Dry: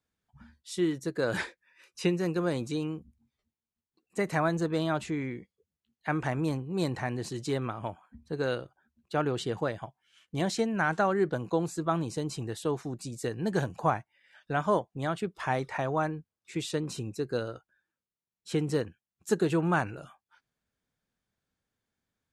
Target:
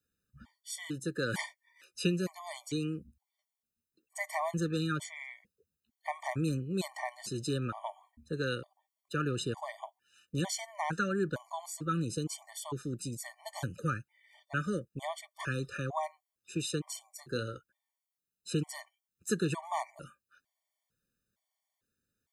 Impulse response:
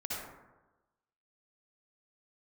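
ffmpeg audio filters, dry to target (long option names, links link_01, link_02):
-filter_complex "[0:a]highshelf=frequency=6800:gain=9.5,acrossover=split=300|820[link_01][link_02][link_03];[link_02]acompressor=threshold=-39dB:ratio=6[link_04];[link_01][link_04][link_03]amix=inputs=3:normalize=0,asettb=1/sr,asplit=3[link_05][link_06][link_07];[link_05]atrim=end=17.134[link_08];[link_06]atrim=start=17.13:end=17.55,asetpts=PTS-STARTPTS,afade=type=in:duration=0.004:curve=qsin,afade=type=out:start_time=0.416:duration=0.004:curve=qsin,asplit=2[link_09][link_10];[link_10]adelay=28,volume=-11.5dB[link_11];[link_09][link_11]amix=inputs=2:normalize=0,atrim=end_sample=18522[link_12];[link_07]atrim=start=17.546[link_13];[link_08][link_12]acrossfade=duration=0.004:curve1=hsin:curve2=qsin[link_14];[link_14][link_13]acrossfade=duration=0.004:curve1=qsin:curve2=hsin,afftfilt=real='re*gt(sin(2*PI*1.1*pts/sr)*(1-2*mod(floor(b*sr/1024/600),2)),0)':imag='im*gt(sin(2*PI*1.1*pts/sr)*(1-2*mod(floor(b*sr/1024/600),2)),0)':win_size=1024:overlap=0.75"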